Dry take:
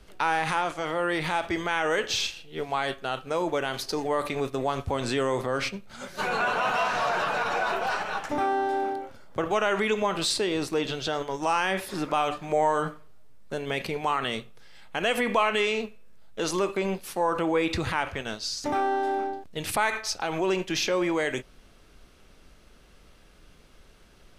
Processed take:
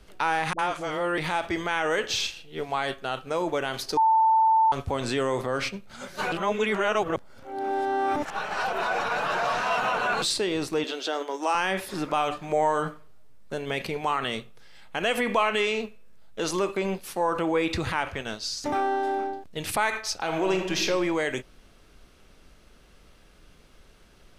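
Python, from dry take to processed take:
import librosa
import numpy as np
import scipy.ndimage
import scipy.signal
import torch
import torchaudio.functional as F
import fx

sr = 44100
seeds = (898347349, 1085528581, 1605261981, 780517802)

y = fx.dispersion(x, sr, late='highs', ms=58.0, hz=480.0, at=(0.53, 1.18))
y = fx.steep_highpass(y, sr, hz=250.0, slope=36, at=(10.84, 11.55))
y = fx.reverb_throw(y, sr, start_s=20.21, length_s=0.62, rt60_s=1.0, drr_db=4.0)
y = fx.edit(y, sr, fx.bleep(start_s=3.97, length_s=0.75, hz=889.0, db=-16.5),
    fx.reverse_span(start_s=6.32, length_s=3.9), tone=tone)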